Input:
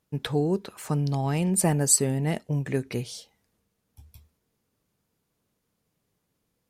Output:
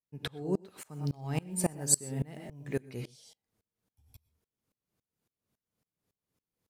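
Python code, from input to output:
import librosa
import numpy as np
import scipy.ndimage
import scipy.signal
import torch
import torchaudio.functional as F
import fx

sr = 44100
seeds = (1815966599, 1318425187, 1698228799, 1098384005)

y = fx.block_float(x, sr, bits=7, at=(0.63, 2.85))
y = fx.rev_gated(y, sr, seeds[0], gate_ms=140, shape='rising', drr_db=7.5)
y = fx.tremolo_decay(y, sr, direction='swelling', hz=3.6, depth_db=26)
y = F.gain(torch.from_numpy(y), -3.0).numpy()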